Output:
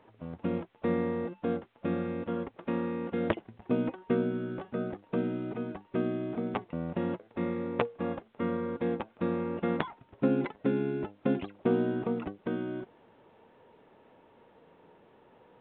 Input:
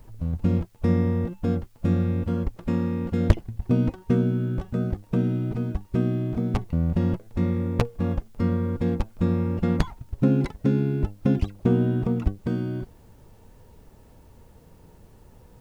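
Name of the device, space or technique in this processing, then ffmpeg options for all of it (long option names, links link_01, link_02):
telephone: -af "highpass=330,lowpass=3300" -ar 8000 -c:a pcm_mulaw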